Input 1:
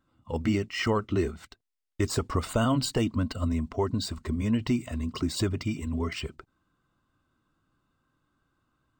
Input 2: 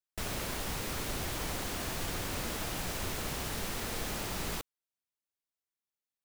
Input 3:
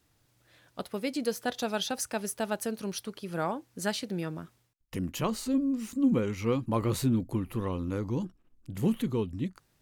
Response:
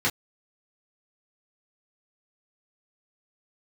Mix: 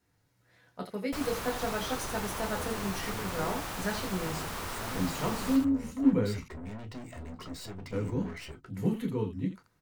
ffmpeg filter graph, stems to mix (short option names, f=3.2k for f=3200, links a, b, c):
-filter_complex "[0:a]alimiter=limit=-23dB:level=0:latency=1:release=99,aeval=exprs='(tanh(89.1*val(0)+0.55)-tanh(0.55))/89.1':c=same,adelay=2250,volume=-2dB,asplit=2[a][b];[b]volume=-15.5dB[c];[1:a]equalizer=f=1.1k:w=1.1:g=8,adelay=950,volume=-4dB,asplit=2[d][e];[e]volume=-6dB[f];[2:a]volume=-7dB,asplit=3[g][h][i];[g]atrim=end=6.4,asetpts=PTS-STARTPTS,afade=t=out:st=6.396:d=0.004:c=hsin[j];[h]atrim=start=6.4:end=7.92,asetpts=PTS-STARTPTS,volume=0[k];[i]atrim=start=7.92,asetpts=PTS-STARTPTS,afade=t=in:d=0.004:c=hsin[l];[j][k][l]concat=n=3:v=0:a=1,asplit=3[m][n][o];[n]volume=-10dB[p];[o]volume=-8dB[q];[3:a]atrim=start_sample=2205[r];[c][p]amix=inputs=2:normalize=0[s];[s][r]afir=irnorm=-1:irlink=0[t];[f][q]amix=inputs=2:normalize=0,aecho=0:1:84:1[u];[a][d][m][t][u]amix=inputs=5:normalize=0"